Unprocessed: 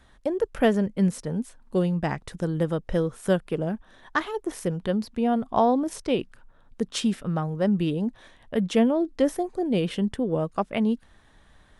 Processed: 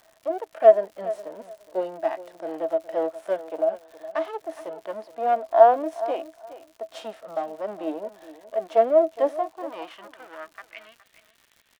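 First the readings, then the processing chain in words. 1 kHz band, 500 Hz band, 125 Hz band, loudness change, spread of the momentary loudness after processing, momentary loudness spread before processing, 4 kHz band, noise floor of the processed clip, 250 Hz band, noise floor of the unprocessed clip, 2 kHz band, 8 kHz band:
+5.5 dB, +4.5 dB, under -25 dB, +2.0 dB, 23 LU, 9 LU, under -10 dB, -62 dBFS, -13.5 dB, -57 dBFS, -5.5 dB, under -10 dB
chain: partial rectifier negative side -12 dB; high-pass 220 Hz; treble shelf 4.9 kHz -10.5 dB; high-pass sweep 640 Hz -> 2.5 kHz, 9.24–10.99 s; small resonant body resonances 310/650 Hz, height 12 dB, ringing for 95 ms; harmonic-percussive split percussive -10 dB; crackle 140 per s -44 dBFS; on a send: feedback delay 416 ms, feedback 18%, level -15.5 dB; on the sum: trim +2.5 dB

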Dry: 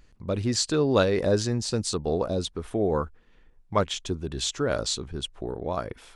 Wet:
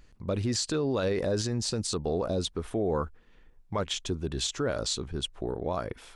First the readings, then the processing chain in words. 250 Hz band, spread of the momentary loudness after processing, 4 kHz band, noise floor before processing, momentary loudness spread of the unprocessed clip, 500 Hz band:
-3.5 dB, 6 LU, -2.0 dB, -58 dBFS, 10 LU, -4.0 dB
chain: peak limiter -20 dBFS, peak gain reduction 11 dB

